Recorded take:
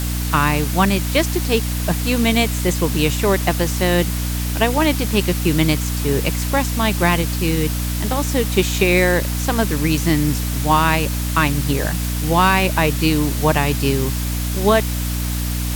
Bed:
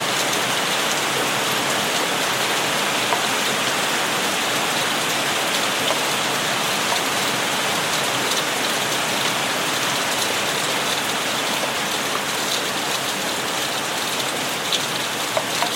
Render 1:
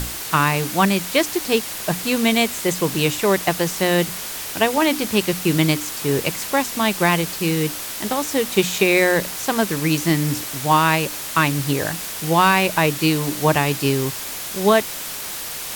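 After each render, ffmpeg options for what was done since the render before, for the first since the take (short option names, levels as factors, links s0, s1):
-af "bandreject=f=60:t=h:w=6,bandreject=f=120:t=h:w=6,bandreject=f=180:t=h:w=6,bandreject=f=240:t=h:w=6,bandreject=f=300:t=h:w=6"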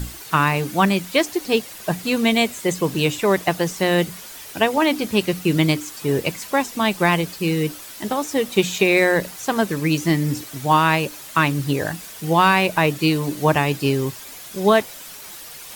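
-af "afftdn=nr=10:nf=-30"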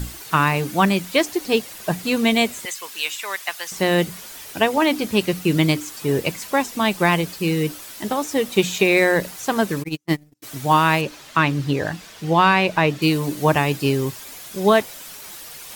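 -filter_complex "[0:a]asettb=1/sr,asplit=3[s0][s1][s2];[s0]atrim=end=2.654[s3];[s1]atrim=start=2.65:end=3.72,asetpts=PTS-STARTPTS,afade=t=in:d=0.004:c=qsin,afade=t=out:st=1.066:d=0.004:c=qsin,highpass=1400[s4];[s2]atrim=start=3.716[s5];[s3][s4]acrossfade=d=0.004:c1=hsin:c2=qsin[s6];[s6][s5]acrossfade=d=0.004:c1=qsin:c2=hsin,asplit=3[s7][s8][s9];[s7]afade=t=out:st=9.82:d=0.02[s10];[s8]agate=range=0.00355:threshold=0.141:ratio=16:release=100:detection=peak,afade=t=in:st=9.82:d=0.02,afade=t=out:st=10.42:d=0.02[s11];[s9]afade=t=in:st=10.42:d=0.02[s12];[s10][s11][s12]amix=inputs=3:normalize=0,asettb=1/sr,asplit=3[s13][s14][s15];[s13]atrim=end=11.014[s16];[s14]atrim=start=11.01:end=13.02,asetpts=PTS-STARTPTS,afade=t=in:d=0.004:c=qsin,afade=t=out:st=2.006:d=0.004:c=qsin,acrossover=split=6200[s17][s18];[s18]acompressor=threshold=0.00282:ratio=4:attack=1:release=60[s19];[s17][s19]amix=inputs=2:normalize=0[s20];[s15]atrim=start=13.016[s21];[s16][s20]acrossfade=d=0.004:c1=hsin:c2=qsin[s22];[s22][s21]acrossfade=d=0.004:c1=qsin:c2=hsin"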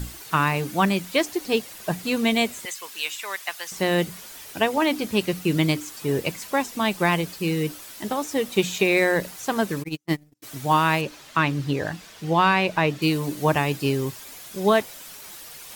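-af "volume=0.668"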